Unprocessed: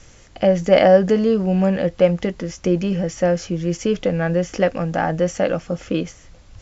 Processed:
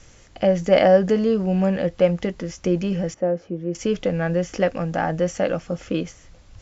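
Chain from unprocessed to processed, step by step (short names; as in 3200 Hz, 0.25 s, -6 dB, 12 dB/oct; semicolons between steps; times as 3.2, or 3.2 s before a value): 3.14–3.75 band-pass 390 Hz, Q 0.84; gain -2.5 dB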